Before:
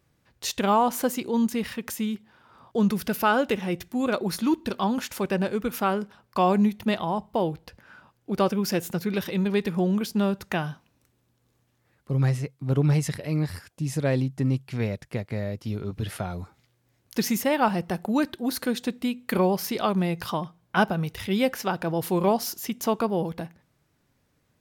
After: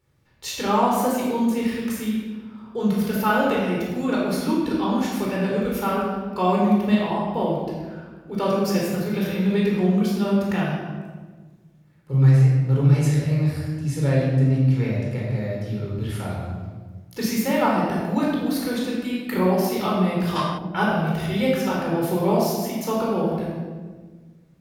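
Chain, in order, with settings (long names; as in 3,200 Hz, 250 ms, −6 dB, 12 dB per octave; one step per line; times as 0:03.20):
rectangular room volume 1,300 cubic metres, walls mixed, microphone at 4.3 metres
gain on a spectral selection 0:20.36–0:20.58, 1,000–11,000 Hz +9 dB
level −6 dB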